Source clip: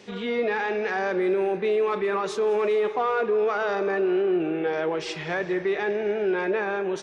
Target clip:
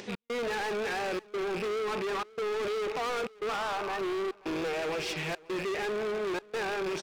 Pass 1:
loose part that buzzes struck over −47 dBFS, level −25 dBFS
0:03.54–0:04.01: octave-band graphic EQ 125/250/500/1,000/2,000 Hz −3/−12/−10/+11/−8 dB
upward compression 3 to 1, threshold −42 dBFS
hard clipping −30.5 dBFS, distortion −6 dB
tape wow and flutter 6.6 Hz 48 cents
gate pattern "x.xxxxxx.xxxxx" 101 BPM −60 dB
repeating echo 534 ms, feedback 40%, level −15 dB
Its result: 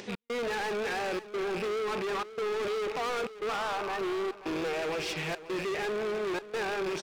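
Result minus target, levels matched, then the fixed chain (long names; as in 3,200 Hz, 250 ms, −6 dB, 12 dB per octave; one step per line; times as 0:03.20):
echo-to-direct +8 dB
loose part that buzzes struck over −47 dBFS, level −25 dBFS
0:03.54–0:04.01: octave-band graphic EQ 125/250/500/1,000/2,000 Hz −3/−12/−10/+11/−8 dB
upward compression 3 to 1, threshold −42 dBFS
hard clipping −30.5 dBFS, distortion −6 dB
tape wow and flutter 6.6 Hz 48 cents
gate pattern "x.xxxxxx.xxxxx" 101 BPM −60 dB
repeating echo 534 ms, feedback 40%, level −23 dB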